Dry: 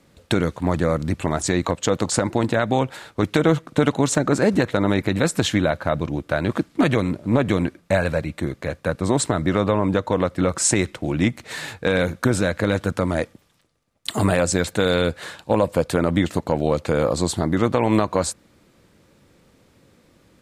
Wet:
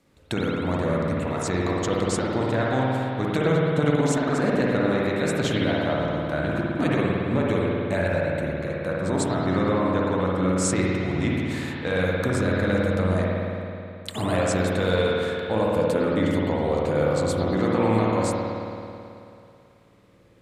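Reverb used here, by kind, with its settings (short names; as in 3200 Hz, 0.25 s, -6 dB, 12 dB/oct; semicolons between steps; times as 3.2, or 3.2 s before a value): spring tank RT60 2.7 s, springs 54 ms, chirp 60 ms, DRR -4.5 dB; gain -8 dB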